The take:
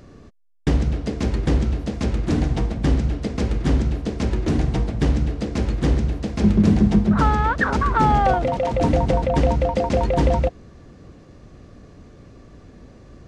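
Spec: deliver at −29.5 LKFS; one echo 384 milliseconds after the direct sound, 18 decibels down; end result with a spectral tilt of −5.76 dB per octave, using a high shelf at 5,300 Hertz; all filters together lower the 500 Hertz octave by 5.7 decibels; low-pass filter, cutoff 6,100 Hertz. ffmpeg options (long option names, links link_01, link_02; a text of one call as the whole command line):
ffmpeg -i in.wav -af "lowpass=6100,equalizer=frequency=500:width_type=o:gain=-7,highshelf=frequency=5300:gain=4.5,aecho=1:1:384:0.126,volume=-7.5dB" out.wav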